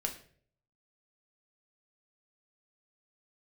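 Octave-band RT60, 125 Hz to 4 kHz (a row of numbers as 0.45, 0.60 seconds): 0.85, 0.60, 0.65, 0.45, 0.50, 0.40 seconds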